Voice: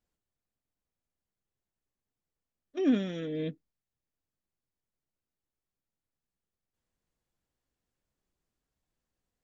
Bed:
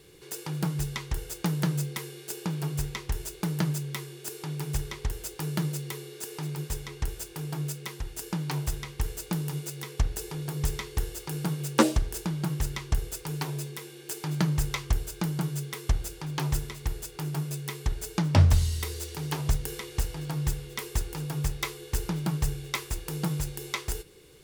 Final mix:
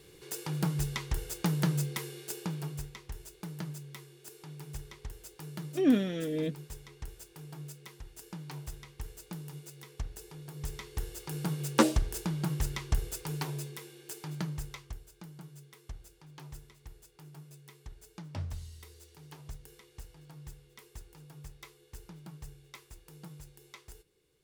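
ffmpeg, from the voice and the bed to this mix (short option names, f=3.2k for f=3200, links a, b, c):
-filter_complex "[0:a]adelay=3000,volume=1.5dB[a];[1:a]volume=8dB,afade=t=out:st=2.18:d=0.73:silence=0.298538,afade=t=in:st=10.52:d=1.14:silence=0.334965,afade=t=out:st=13.24:d=1.76:silence=0.149624[b];[a][b]amix=inputs=2:normalize=0"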